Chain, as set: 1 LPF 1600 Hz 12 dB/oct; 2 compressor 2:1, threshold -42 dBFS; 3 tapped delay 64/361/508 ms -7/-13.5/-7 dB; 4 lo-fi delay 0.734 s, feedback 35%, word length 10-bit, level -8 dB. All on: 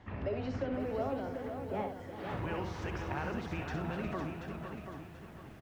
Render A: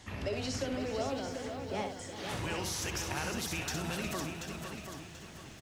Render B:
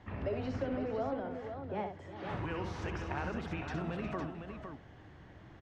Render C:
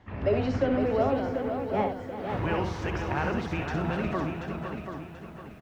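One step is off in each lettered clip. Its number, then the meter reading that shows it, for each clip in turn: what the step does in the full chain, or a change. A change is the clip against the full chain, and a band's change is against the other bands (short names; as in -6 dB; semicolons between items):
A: 1, 8 kHz band +22.5 dB; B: 4, momentary loudness spread change +6 LU; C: 2, mean gain reduction 5.5 dB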